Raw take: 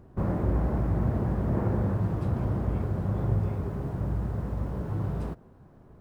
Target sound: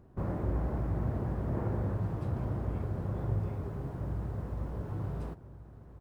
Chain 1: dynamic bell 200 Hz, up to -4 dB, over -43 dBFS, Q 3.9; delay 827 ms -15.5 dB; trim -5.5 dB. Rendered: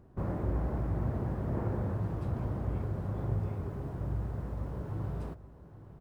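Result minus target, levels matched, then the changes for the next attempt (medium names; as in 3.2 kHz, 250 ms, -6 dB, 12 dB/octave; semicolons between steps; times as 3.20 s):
echo 603 ms early
change: delay 1430 ms -15.5 dB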